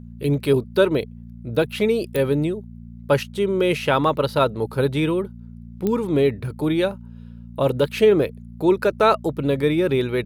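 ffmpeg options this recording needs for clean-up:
ffmpeg -i in.wav -af "adeclick=threshold=4,bandreject=frequency=58.2:width_type=h:width=4,bandreject=frequency=116.4:width_type=h:width=4,bandreject=frequency=174.6:width_type=h:width=4,bandreject=frequency=232.8:width_type=h:width=4" out.wav

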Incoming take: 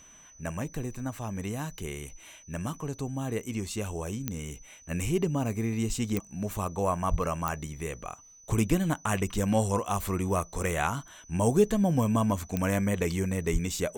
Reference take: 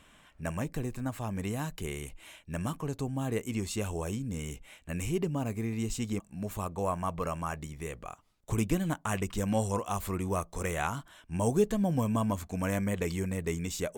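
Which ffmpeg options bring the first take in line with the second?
ffmpeg -i in.wav -filter_complex "[0:a]adeclick=threshold=4,bandreject=frequency=6000:width=30,asplit=3[link_01][link_02][link_03];[link_01]afade=type=out:start_time=7.1:duration=0.02[link_04];[link_02]highpass=frequency=140:width=0.5412,highpass=frequency=140:width=1.3066,afade=type=in:start_time=7.1:duration=0.02,afade=type=out:start_time=7.22:duration=0.02[link_05];[link_03]afade=type=in:start_time=7.22:duration=0.02[link_06];[link_04][link_05][link_06]amix=inputs=3:normalize=0,asplit=3[link_07][link_08][link_09];[link_07]afade=type=out:start_time=13.52:duration=0.02[link_10];[link_08]highpass=frequency=140:width=0.5412,highpass=frequency=140:width=1.3066,afade=type=in:start_time=13.52:duration=0.02,afade=type=out:start_time=13.64:duration=0.02[link_11];[link_09]afade=type=in:start_time=13.64:duration=0.02[link_12];[link_10][link_11][link_12]amix=inputs=3:normalize=0,asetnsamples=nb_out_samples=441:pad=0,asendcmd='4.91 volume volume -3.5dB',volume=0dB" out.wav

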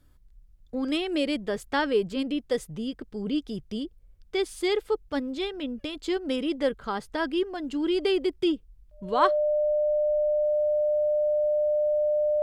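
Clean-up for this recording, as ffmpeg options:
ffmpeg -i in.wav -af "bandreject=frequency=600:width=30" out.wav

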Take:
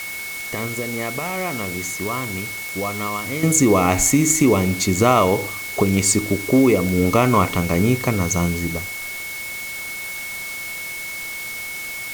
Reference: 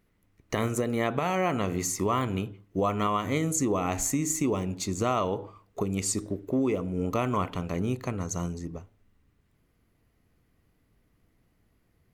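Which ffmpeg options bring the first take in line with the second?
ffmpeg -i in.wav -af "adeclick=threshold=4,bandreject=frequency=2200:width=30,afwtdn=0.02,asetnsamples=nb_out_samples=441:pad=0,asendcmd='3.43 volume volume -11.5dB',volume=0dB" out.wav

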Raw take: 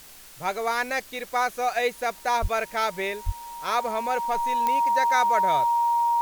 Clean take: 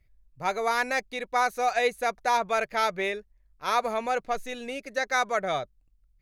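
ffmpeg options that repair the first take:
ffmpeg -i in.wav -filter_complex "[0:a]adeclick=threshold=4,bandreject=frequency=940:width=30,asplit=3[link_01][link_02][link_03];[link_01]afade=type=out:start_time=2.41:duration=0.02[link_04];[link_02]highpass=frequency=140:width=0.5412,highpass=frequency=140:width=1.3066,afade=type=in:start_time=2.41:duration=0.02,afade=type=out:start_time=2.53:duration=0.02[link_05];[link_03]afade=type=in:start_time=2.53:duration=0.02[link_06];[link_04][link_05][link_06]amix=inputs=3:normalize=0,asplit=3[link_07][link_08][link_09];[link_07]afade=type=out:start_time=3.25:duration=0.02[link_10];[link_08]highpass=frequency=140:width=0.5412,highpass=frequency=140:width=1.3066,afade=type=in:start_time=3.25:duration=0.02,afade=type=out:start_time=3.37:duration=0.02[link_11];[link_09]afade=type=in:start_time=3.37:duration=0.02[link_12];[link_10][link_11][link_12]amix=inputs=3:normalize=0,afftdn=noise_reduction=16:noise_floor=-46" out.wav

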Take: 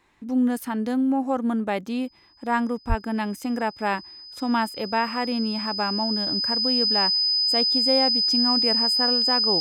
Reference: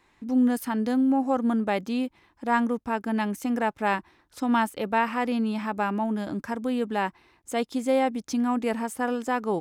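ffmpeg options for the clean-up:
ffmpeg -i in.wav -filter_complex "[0:a]bandreject=frequency=5000:width=30,asplit=3[link_01][link_02][link_03];[link_01]afade=type=out:start_time=2.88:duration=0.02[link_04];[link_02]highpass=frequency=140:width=0.5412,highpass=frequency=140:width=1.3066,afade=type=in:start_time=2.88:duration=0.02,afade=type=out:start_time=3:duration=0.02[link_05];[link_03]afade=type=in:start_time=3:duration=0.02[link_06];[link_04][link_05][link_06]amix=inputs=3:normalize=0" out.wav

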